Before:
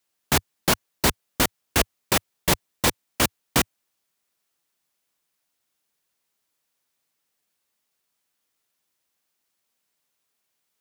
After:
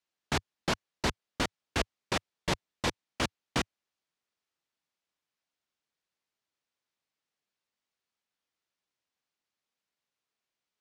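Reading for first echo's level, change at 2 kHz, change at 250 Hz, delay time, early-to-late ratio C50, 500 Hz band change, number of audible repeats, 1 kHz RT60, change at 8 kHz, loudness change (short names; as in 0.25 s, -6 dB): none, -8.0 dB, -8.0 dB, none, none, -8.0 dB, none, none, -15.0 dB, -10.0 dB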